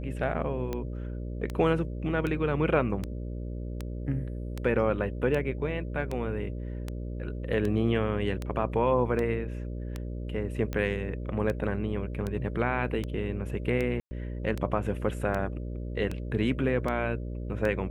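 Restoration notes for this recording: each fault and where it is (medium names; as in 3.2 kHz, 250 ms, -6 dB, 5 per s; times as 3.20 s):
buzz 60 Hz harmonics 10 -35 dBFS
tick 78 rpm -19 dBFS
14.00–14.11 s: dropout 110 ms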